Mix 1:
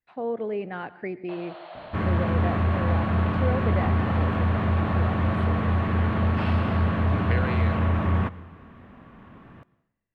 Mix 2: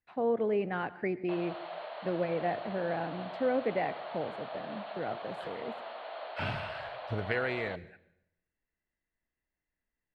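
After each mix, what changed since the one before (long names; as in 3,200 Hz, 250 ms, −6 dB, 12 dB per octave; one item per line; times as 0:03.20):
second sound: muted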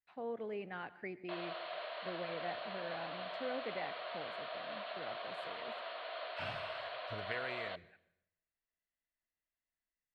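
speech −9.0 dB
background: add Butterworth band-reject 840 Hz, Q 5.8
master: add tilt shelving filter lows −4.5 dB, about 1,300 Hz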